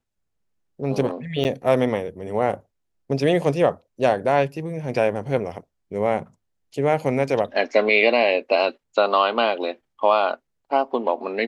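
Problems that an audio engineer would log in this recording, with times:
1.44–1.45 s: dropout 9.1 ms

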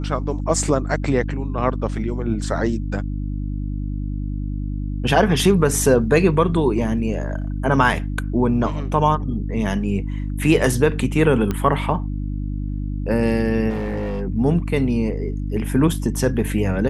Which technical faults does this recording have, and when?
hum 50 Hz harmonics 6 -25 dBFS
11.51 s: pop -10 dBFS
13.69–14.22 s: clipped -21 dBFS

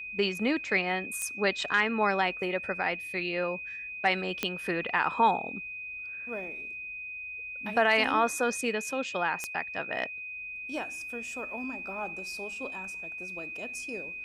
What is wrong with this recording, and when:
whine 2.5 kHz -37 dBFS
1.22 s: pop -18 dBFS
4.43 s: pop -12 dBFS
9.44 s: pop -17 dBFS

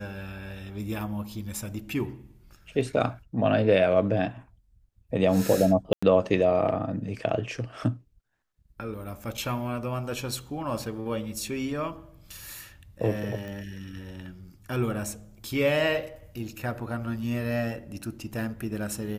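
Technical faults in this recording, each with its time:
5.93–6.03 s: dropout 95 ms
13.48 s: pop -27 dBFS

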